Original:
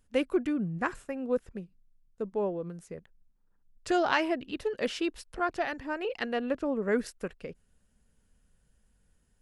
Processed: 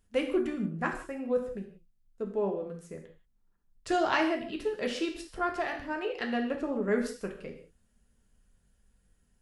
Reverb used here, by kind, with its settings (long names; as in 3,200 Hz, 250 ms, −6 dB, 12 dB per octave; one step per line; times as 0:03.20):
reverb whose tail is shaped and stops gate 210 ms falling, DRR 2 dB
level −2.5 dB